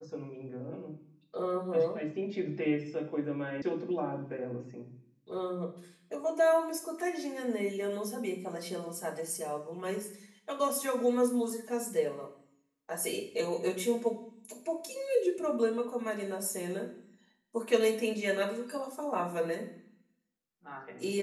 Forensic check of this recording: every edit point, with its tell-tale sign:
0:03.62: cut off before it has died away

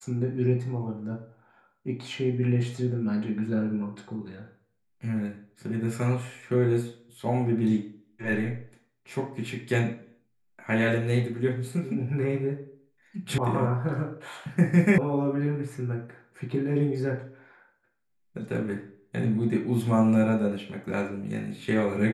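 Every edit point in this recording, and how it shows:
0:13.38: cut off before it has died away
0:14.98: cut off before it has died away

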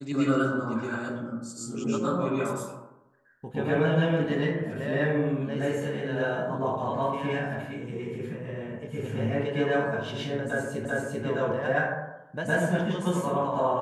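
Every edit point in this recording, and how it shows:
0:10.85: the same again, the last 0.39 s

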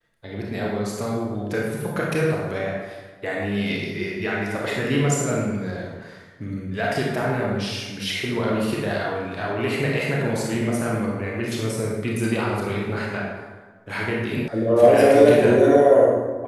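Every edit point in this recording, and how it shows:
0:14.48: cut off before it has died away

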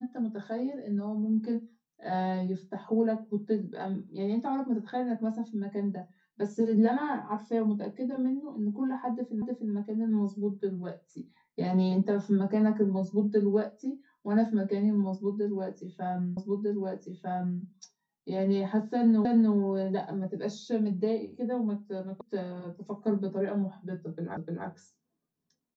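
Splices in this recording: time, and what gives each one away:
0:09.42: the same again, the last 0.3 s
0:16.37: the same again, the last 1.25 s
0:19.25: the same again, the last 0.3 s
0:22.21: cut off before it has died away
0:24.37: the same again, the last 0.3 s

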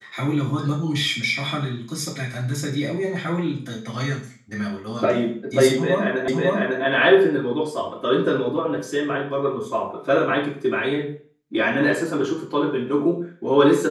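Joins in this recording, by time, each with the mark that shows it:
0:06.28: the same again, the last 0.55 s

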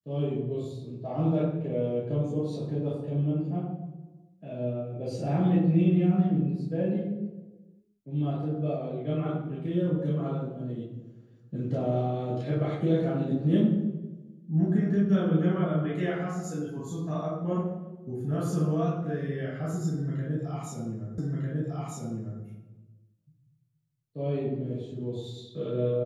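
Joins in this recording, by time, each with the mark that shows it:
0:21.18: the same again, the last 1.25 s

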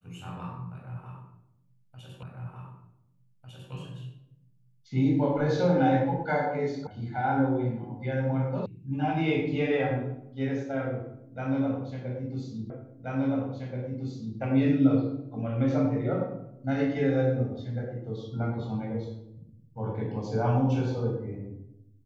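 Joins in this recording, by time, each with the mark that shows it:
0:02.23: the same again, the last 1.5 s
0:06.87: cut off before it has died away
0:08.66: cut off before it has died away
0:12.70: the same again, the last 1.68 s

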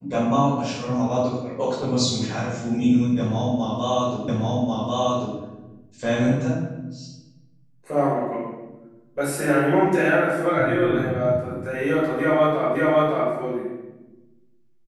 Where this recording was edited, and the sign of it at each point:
0:04.28: the same again, the last 1.09 s
0:12.75: the same again, the last 0.56 s

